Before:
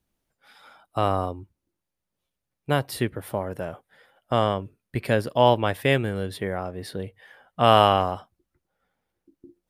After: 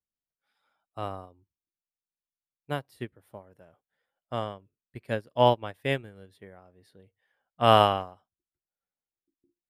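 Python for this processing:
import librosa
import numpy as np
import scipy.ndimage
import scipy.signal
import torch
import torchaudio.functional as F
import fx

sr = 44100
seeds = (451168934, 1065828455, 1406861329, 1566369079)

y = fx.upward_expand(x, sr, threshold_db=-30.0, expansion=2.5)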